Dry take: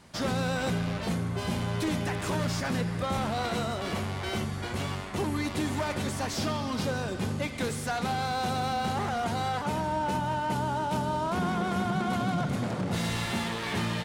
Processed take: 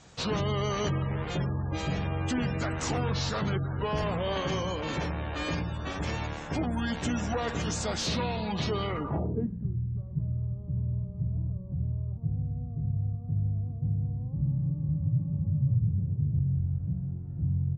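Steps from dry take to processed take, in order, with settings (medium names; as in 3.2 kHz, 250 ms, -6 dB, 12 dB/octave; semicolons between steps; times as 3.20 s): spectral gate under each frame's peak -30 dB strong; tape speed -21%; low-pass sweep 7.1 kHz -> 120 Hz, 8.61–9.65 s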